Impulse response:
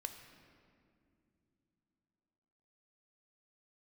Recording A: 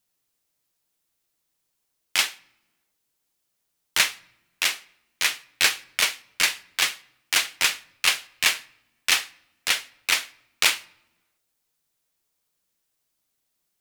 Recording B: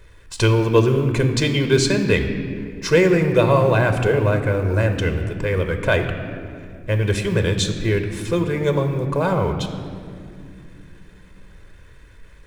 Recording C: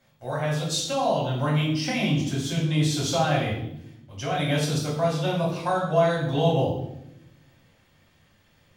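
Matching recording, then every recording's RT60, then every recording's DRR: B; non-exponential decay, non-exponential decay, 0.85 s; 14.0, 6.0, −5.5 decibels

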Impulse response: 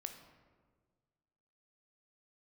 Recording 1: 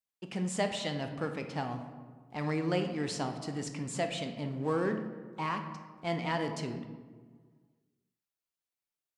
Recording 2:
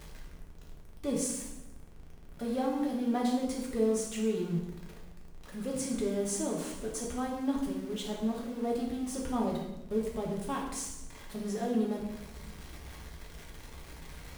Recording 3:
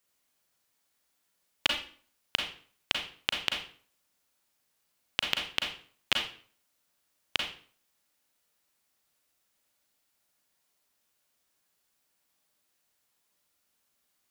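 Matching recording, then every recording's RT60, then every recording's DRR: 1; 1.6, 0.90, 0.45 seconds; 5.5, −2.5, 1.0 decibels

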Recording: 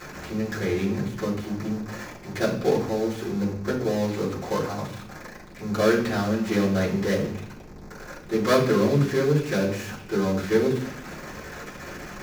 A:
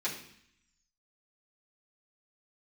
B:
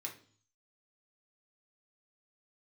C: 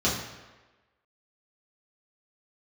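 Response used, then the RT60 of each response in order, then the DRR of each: A; 0.65, 0.45, 1.2 seconds; −9.0, 0.0, −7.5 decibels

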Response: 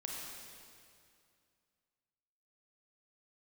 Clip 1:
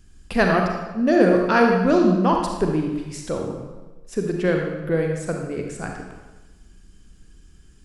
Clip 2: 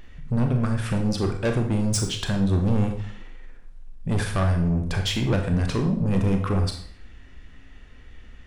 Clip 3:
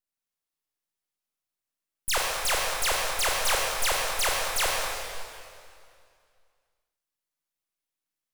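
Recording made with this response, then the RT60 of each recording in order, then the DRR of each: 3; 1.2, 0.55, 2.4 seconds; 1.0, 3.5, −2.5 decibels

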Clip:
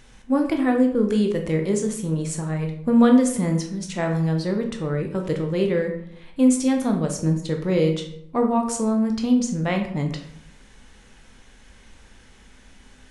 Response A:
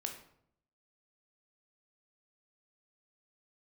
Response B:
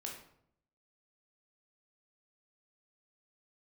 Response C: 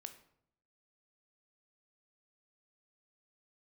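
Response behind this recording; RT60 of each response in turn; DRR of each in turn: A; 0.70, 0.70, 0.70 seconds; 3.0, −1.0, 7.5 decibels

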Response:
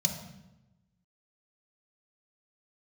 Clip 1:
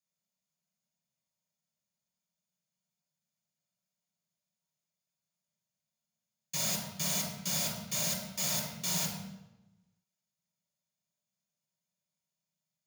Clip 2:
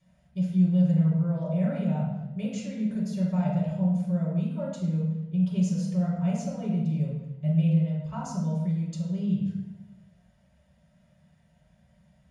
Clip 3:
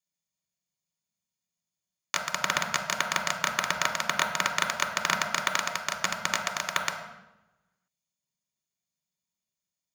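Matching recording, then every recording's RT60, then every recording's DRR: 3; 0.95, 0.95, 0.95 seconds; −4.5, −9.0, 2.5 decibels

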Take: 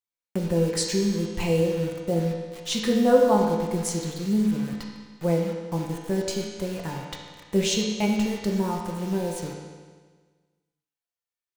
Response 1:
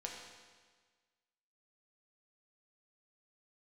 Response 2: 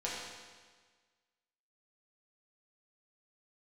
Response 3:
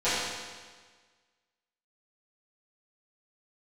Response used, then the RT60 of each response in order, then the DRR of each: 1; 1.5, 1.5, 1.5 seconds; −1.5, −7.0, −16.5 decibels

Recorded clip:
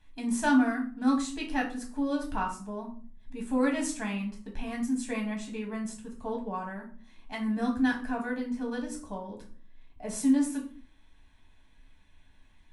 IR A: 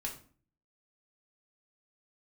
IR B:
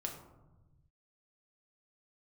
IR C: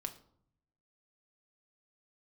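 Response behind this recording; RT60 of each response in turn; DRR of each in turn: A; 0.45, 1.1, 0.65 seconds; −1.0, 1.0, 5.0 decibels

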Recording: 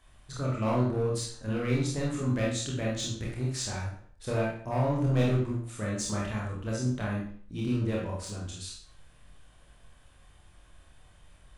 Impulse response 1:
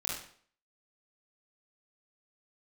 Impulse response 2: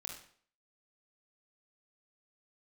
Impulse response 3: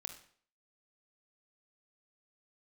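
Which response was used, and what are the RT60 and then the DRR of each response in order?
1; 0.55, 0.55, 0.55 seconds; −5.0, 0.0, 5.0 decibels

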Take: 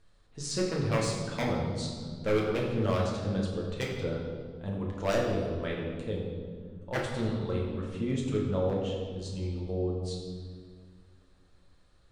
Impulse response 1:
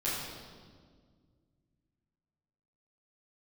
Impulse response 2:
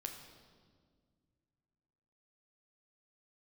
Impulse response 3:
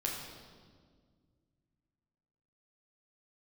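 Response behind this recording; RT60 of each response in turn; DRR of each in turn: 3; 1.8, 1.8, 1.8 seconds; −11.5, 3.0, −3.0 decibels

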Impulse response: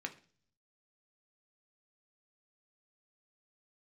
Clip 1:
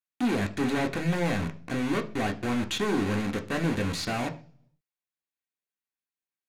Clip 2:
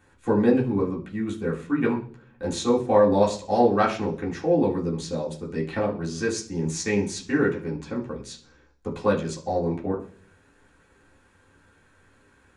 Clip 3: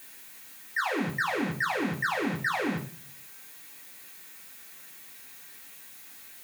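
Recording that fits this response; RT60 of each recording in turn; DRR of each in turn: 1; 0.45, 0.45, 0.45 seconds; 4.0, −5.0, −1.0 decibels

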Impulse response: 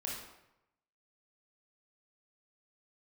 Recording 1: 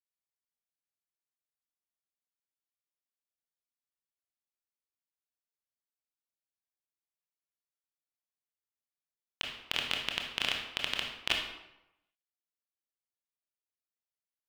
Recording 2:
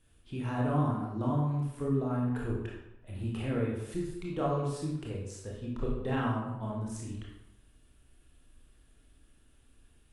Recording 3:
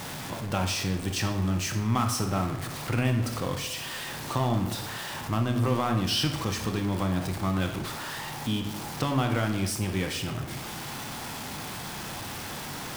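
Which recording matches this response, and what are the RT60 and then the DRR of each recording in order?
2; 0.85, 0.90, 0.85 seconds; 1.0, −3.5, 5.0 decibels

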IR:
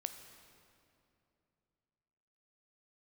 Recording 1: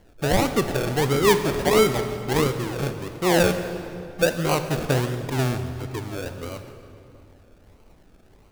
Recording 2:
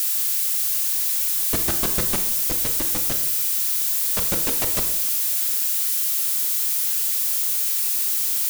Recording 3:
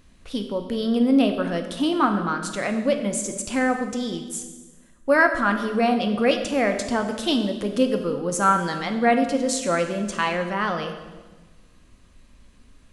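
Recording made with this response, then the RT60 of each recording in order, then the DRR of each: 1; 2.7, 0.85, 1.3 seconds; 7.5, 6.0, 5.0 decibels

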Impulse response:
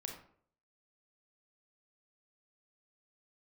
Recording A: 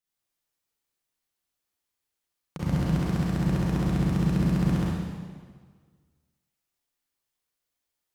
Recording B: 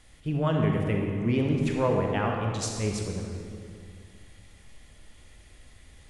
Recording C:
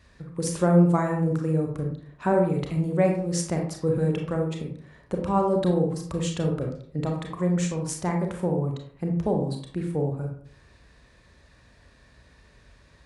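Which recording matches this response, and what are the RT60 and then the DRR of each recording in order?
C; 1.7, 2.2, 0.60 seconds; −7.0, 1.0, 1.5 decibels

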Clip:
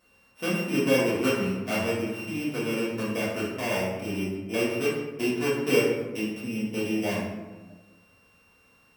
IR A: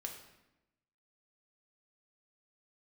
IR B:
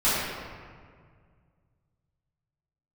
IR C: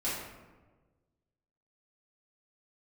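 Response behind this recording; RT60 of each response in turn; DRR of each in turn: C; 0.95, 1.9, 1.3 seconds; 2.0, −14.0, −10.0 decibels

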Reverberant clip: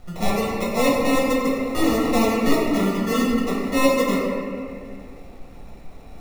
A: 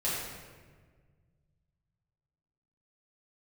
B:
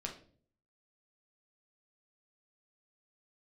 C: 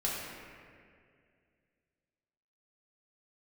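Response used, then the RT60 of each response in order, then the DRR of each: C; 1.6, 0.50, 2.2 seconds; −9.0, 0.5, −5.5 decibels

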